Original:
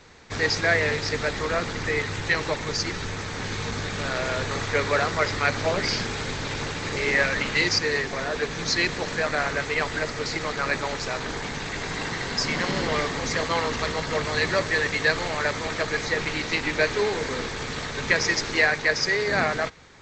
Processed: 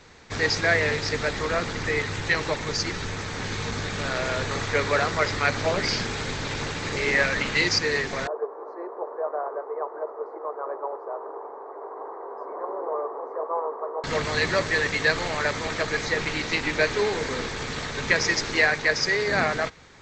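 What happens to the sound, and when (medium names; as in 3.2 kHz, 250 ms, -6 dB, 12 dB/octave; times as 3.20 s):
8.27–14.04 s: elliptic band-pass 390–1100 Hz, stop band 50 dB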